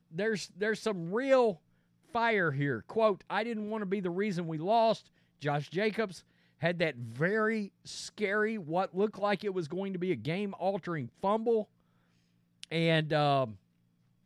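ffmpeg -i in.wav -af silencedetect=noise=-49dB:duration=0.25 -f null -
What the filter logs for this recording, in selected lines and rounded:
silence_start: 1.56
silence_end: 2.09 | silence_duration: 0.53
silence_start: 5.06
silence_end: 5.42 | silence_duration: 0.35
silence_start: 6.21
silence_end: 6.61 | silence_duration: 0.40
silence_start: 11.64
silence_end: 12.63 | silence_duration: 0.99
silence_start: 13.56
silence_end: 14.25 | silence_duration: 0.69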